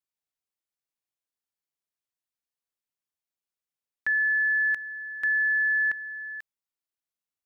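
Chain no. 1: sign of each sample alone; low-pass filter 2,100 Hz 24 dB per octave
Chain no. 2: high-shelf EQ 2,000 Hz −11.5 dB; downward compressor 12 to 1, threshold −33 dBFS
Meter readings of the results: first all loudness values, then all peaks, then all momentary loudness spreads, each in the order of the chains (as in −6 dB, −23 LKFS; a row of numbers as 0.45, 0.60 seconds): −35.0, −35.0 LKFS; −29.5, −24.5 dBFS; 13, 8 LU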